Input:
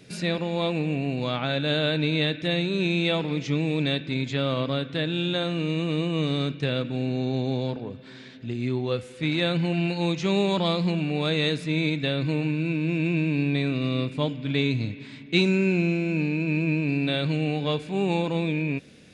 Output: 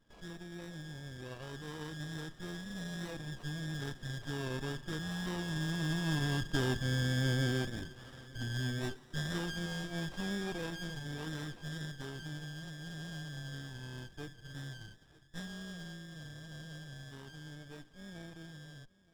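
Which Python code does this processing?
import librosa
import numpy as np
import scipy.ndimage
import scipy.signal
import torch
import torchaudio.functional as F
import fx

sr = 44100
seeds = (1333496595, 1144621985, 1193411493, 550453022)

p1 = fx.band_shuffle(x, sr, order='4123')
p2 = fx.doppler_pass(p1, sr, speed_mps=5, closest_m=6.5, pass_at_s=7.14)
p3 = fx.air_absorb(p2, sr, metres=250.0)
p4 = p3 + fx.echo_single(p3, sr, ms=920, db=-21.5, dry=0)
y = fx.running_max(p4, sr, window=17)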